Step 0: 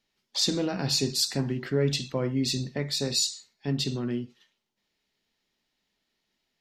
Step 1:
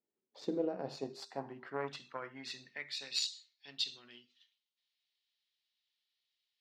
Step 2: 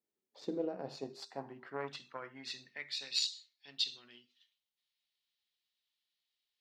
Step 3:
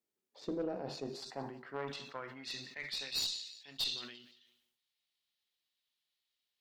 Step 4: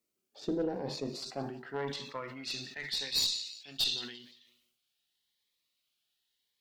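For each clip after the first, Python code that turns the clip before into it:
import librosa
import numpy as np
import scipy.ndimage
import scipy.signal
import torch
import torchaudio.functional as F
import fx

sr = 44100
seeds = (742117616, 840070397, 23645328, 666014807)

y1 = fx.hum_notches(x, sr, base_hz=50, count=8)
y1 = fx.cheby_harmonics(y1, sr, harmonics=(3,), levels_db=(-15,), full_scale_db=-12.0)
y1 = fx.filter_sweep_bandpass(y1, sr, from_hz=370.0, to_hz=3600.0, start_s=0.29, end_s=3.52, q=2.1)
y1 = y1 * 10.0 ** (3.5 / 20.0)
y2 = fx.dynamic_eq(y1, sr, hz=4100.0, q=0.8, threshold_db=-49.0, ratio=4.0, max_db=4)
y2 = y2 * 10.0 ** (-2.0 / 20.0)
y3 = fx.echo_feedback(y2, sr, ms=173, feedback_pct=34, wet_db=-21.0)
y3 = fx.tube_stage(y3, sr, drive_db=29.0, bias=0.3)
y3 = fx.sustainer(y3, sr, db_per_s=62.0)
y3 = y3 * 10.0 ** (1.0 / 20.0)
y4 = fx.notch_cascade(y3, sr, direction='rising', hz=0.88)
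y4 = y4 * 10.0 ** (6.0 / 20.0)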